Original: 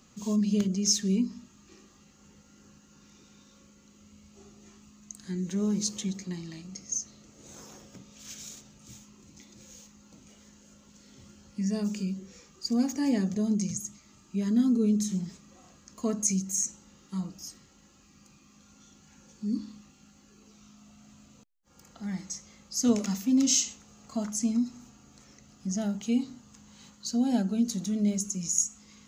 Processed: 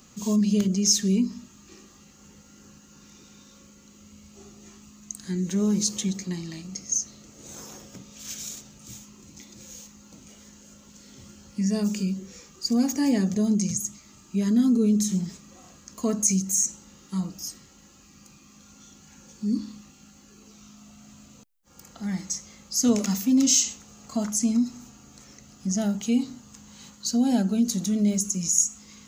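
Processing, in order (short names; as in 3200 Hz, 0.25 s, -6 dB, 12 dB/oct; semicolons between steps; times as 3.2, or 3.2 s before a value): high shelf 9000 Hz +8.5 dB; in parallel at -2.5 dB: limiter -21.5 dBFS, peak gain reduction 12 dB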